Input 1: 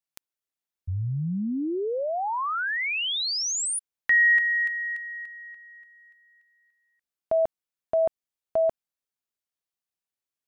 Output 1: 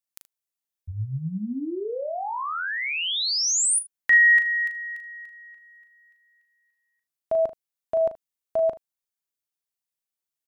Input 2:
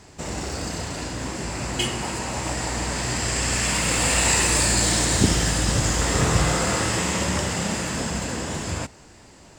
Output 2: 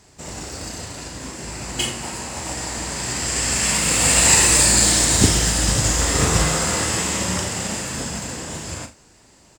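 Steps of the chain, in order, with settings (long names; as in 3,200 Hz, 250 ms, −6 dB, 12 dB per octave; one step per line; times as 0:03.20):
high-shelf EQ 5,000 Hz +7.5 dB
ambience of single reflections 38 ms −7.5 dB, 77 ms −16 dB
expander for the loud parts 1.5 to 1, over −30 dBFS
level +2.5 dB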